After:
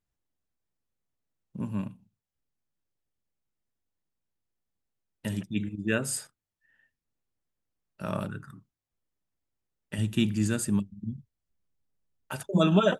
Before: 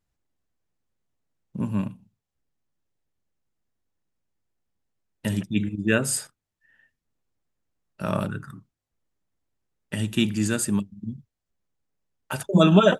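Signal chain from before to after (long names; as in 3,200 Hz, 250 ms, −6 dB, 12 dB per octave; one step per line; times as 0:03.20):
0:09.98–0:12.33: low-shelf EQ 200 Hz +7.5 dB
level −6 dB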